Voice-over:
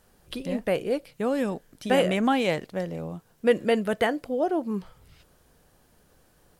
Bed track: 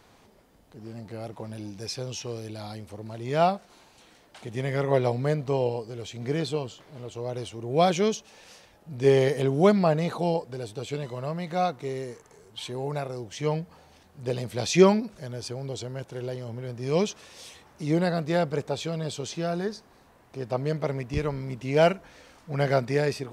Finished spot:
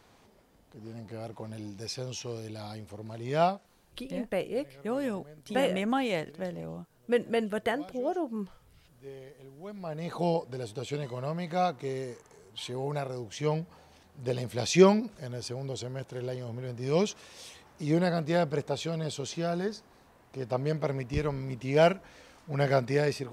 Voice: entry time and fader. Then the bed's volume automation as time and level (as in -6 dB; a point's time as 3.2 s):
3.65 s, -5.5 dB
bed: 3.44 s -3 dB
4.14 s -26 dB
9.63 s -26 dB
10.21 s -2 dB